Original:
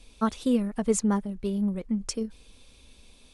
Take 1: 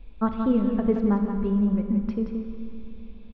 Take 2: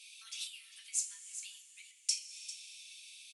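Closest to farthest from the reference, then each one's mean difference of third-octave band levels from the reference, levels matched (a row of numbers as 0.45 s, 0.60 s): 1, 2; 7.5 dB, 16.5 dB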